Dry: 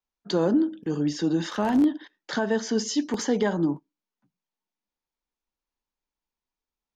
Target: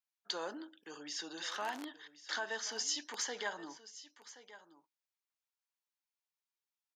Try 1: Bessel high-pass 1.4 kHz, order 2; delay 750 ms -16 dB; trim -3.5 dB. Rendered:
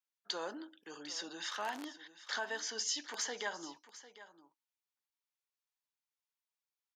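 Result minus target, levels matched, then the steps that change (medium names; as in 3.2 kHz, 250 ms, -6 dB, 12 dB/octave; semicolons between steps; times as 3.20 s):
echo 326 ms early
change: delay 1076 ms -16 dB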